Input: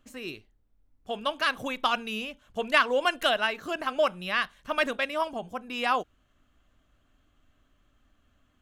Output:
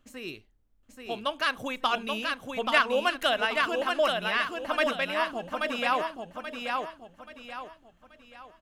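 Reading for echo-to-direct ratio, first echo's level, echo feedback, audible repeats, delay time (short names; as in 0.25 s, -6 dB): -3.5 dB, -4.0 dB, 36%, 4, 0.831 s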